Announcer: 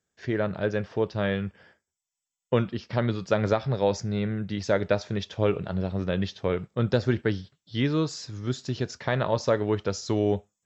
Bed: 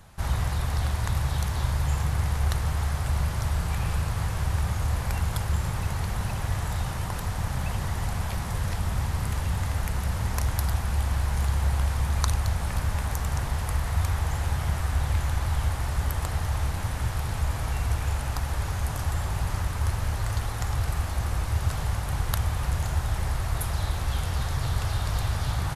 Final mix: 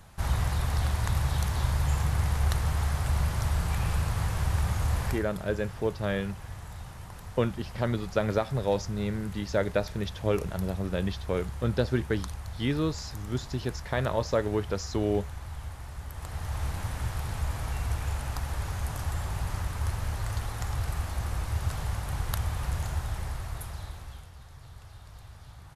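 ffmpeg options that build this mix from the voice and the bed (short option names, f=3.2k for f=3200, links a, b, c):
-filter_complex "[0:a]adelay=4850,volume=-3dB[a];[1:a]volume=8dB,afade=t=out:st=5.05:d=0.2:silence=0.251189,afade=t=in:st=16.1:d=0.59:silence=0.354813,afade=t=out:st=22.8:d=1.51:silence=0.141254[b];[a][b]amix=inputs=2:normalize=0"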